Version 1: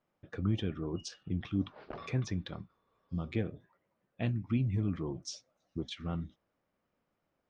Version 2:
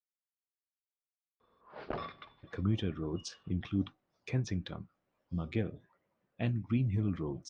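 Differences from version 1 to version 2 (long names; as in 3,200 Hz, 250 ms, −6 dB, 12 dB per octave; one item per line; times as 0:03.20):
speech: entry +2.20 s
background +6.0 dB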